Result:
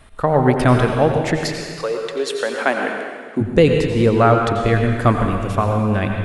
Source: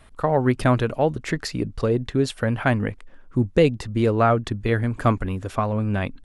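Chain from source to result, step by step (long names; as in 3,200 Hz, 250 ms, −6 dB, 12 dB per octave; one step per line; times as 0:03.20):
0:01.36–0:03.40: high-pass filter 650 Hz → 210 Hz 24 dB per octave
convolution reverb RT60 1.7 s, pre-delay 78 ms, DRR 2.5 dB
level +4 dB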